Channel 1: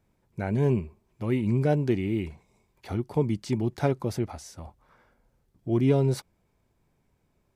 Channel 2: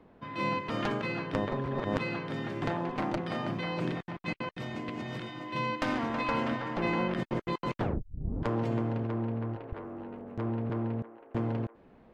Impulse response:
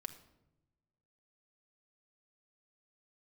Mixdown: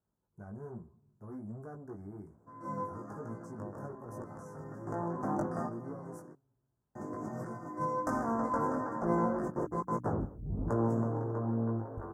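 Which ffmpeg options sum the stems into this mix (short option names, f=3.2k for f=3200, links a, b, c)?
-filter_complex "[0:a]equalizer=f=1.8k:t=o:w=1.2:g=6.5,asoftclip=type=tanh:threshold=-24.5dB,volume=-15dB,asplit=3[a][b][c];[b]volume=-4dB[d];[1:a]highshelf=f=4.3k:g=7,bandreject=f=60:t=h:w=6,bandreject=f=120:t=h:w=6,bandreject=f=180:t=h:w=6,bandreject=f=240:t=h:w=6,bandreject=f=300:t=h:w=6,adelay=2250,volume=2dB,asplit=3[e][f][g];[e]atrim=end=6.18,asetpts=PTS-STARTPTS,afade=t=out:st=6.176:d=0.004:c=hsin[h];[f]atrim=start=6.18:end=6.95,asetpts=PTS-STARTPTS,volume=0[i];[g]atrim=start=6.95,asetpts=PTS-STARTPTS,afade=t=in:d=0.004:c=hsin[j];[h][i][j]concat=n=3:v=0:a=1,asplit=2[k][l];[l]volume=-17.5dB[m];[c]apad=whole_len=634512[n];[k][n]sidechaincompress=threshold=-57dB:ratio=8:attack=16:release=995[o];[2:a]atrim=start_sample=2205[p];[d][p]afir=irnorm=-1:irlink=0[q];[m]aecho=0:1:153:1[r];[a][o][q][r]amix=inputs=4:normalize=0,highpass=44,flanger=delay=17.5:depth=2.4:speed=1.2,asuperstop=centerf=3100:order=8:qfactor=0.63"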